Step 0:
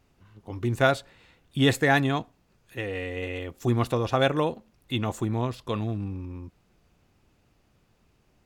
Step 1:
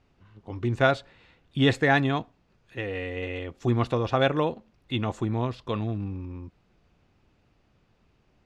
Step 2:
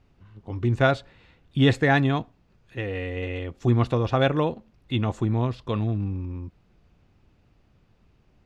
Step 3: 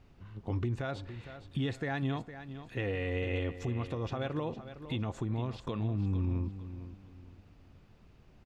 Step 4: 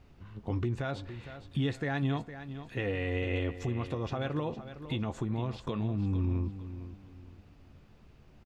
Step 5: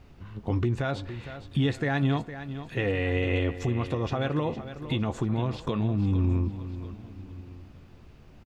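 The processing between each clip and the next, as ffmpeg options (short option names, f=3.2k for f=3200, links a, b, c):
-af "lowpass=4.8k"
-af "lowshelf=f=210:g=6.5"
-af "acompressor=threshold=-26dB:ratio=12,alimiter=level_in=2dB:limit=-24dB:level=0:latency=1:release=257,volume=-2dB,aecho=1:1:459|918|1377:0.251|0.0754|0.0226,volume=1.5dB"
-filter_complex "[0:a]asplit=2[a][b];[b]adelay=14,volume=-12dB[c];[a][c]amix=inputs=2:normalize=0,volume=1.5dB"
-af "aecho=1:1:1154:0.0944,volume=5.5dB"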